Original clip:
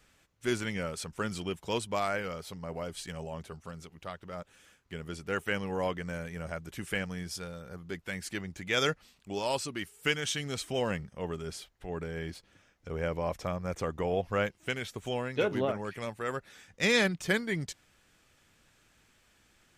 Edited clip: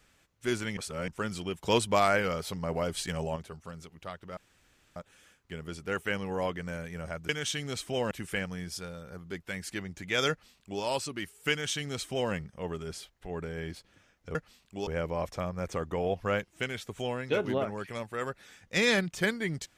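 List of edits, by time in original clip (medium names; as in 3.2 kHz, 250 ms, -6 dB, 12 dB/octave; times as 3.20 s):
0.77–1.08 s: reverse
1.63–3.36 s: gain +6.5 dB
4.37 s: insert room tone 0.59 s
8.89–9.41 s: copy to 12.94 s
10.10–10.92 s: copy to 6.70 s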